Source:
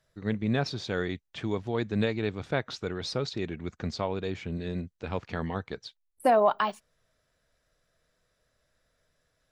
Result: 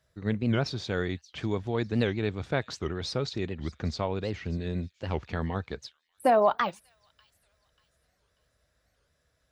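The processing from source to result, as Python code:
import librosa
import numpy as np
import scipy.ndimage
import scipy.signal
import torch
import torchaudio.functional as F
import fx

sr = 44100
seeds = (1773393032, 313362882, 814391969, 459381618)

p1 = scipy.signal.sosfilt(scipy.signal.butter(2, 44.0, 'highpass', fs=sr, output='sos'), x)
p2 = fx.peak_eq(p1, sr, hz=64.0, db=9.5, octaves=0.96)
p3 = p2 + fx.echo_wet_highpass(p2, sr, ms=589, feedback_pct=38, hz=4500.0, wet_db=-16.0, dry=0)
y = fx.record_warp(p3, sr, rpm=78.0, depth_cents=250.0)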